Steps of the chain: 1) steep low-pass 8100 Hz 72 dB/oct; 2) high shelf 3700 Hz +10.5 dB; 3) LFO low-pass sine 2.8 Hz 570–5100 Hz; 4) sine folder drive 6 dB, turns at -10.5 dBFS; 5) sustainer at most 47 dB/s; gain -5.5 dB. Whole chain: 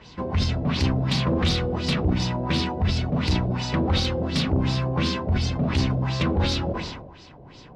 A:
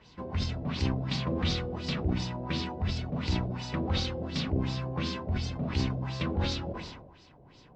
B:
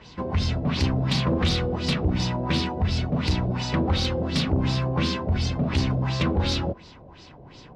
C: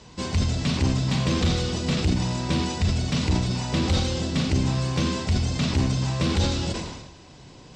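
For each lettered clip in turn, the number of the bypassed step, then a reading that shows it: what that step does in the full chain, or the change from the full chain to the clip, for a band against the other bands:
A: 4, distortion -15 dB; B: 5, crest factor change -3.0 dB; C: 3, 8 kHz band +7.5 dB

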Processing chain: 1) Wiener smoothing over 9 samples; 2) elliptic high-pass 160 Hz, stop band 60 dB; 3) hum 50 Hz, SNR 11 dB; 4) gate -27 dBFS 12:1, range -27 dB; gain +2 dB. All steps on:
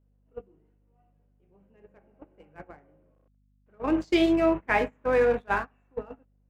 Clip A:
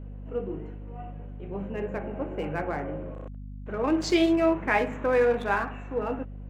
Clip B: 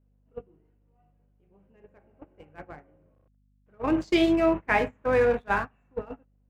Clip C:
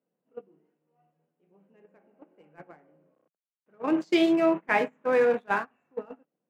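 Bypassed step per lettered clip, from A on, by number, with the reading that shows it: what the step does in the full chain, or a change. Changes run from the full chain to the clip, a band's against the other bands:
4, momentary loudness spread change +1 LU; 2, 125 Hz band +2.5 dB; 3, 125 Hz band -7.5 dB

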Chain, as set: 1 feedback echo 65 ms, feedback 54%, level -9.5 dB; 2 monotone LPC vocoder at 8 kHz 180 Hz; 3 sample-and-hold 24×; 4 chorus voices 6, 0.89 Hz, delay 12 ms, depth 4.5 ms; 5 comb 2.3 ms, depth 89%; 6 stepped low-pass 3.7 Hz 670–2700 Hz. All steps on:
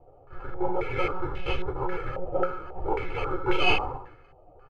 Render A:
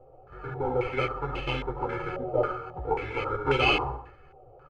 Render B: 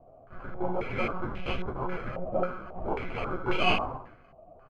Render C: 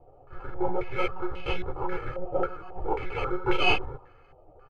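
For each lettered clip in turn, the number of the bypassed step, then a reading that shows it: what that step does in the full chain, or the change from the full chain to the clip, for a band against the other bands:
2, 250 Hz band -2.0 dB; 5, momentary loudness spread change +5 LU; 1, momentary loudness spread change +2 LU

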